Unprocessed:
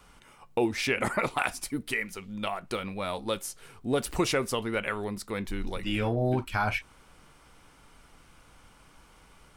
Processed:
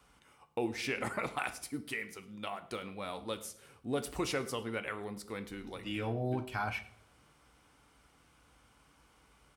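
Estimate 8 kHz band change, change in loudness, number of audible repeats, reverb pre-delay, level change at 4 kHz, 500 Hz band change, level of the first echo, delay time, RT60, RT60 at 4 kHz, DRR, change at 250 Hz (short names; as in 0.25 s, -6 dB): -7.5 dB, -7.5 dB, 1, 3 ms, -7.5 dB, -7.5 dB, -21.0 dB, 0.105 s, 0.70 s, 0.55 s, 9.5 dB, -7.5 dB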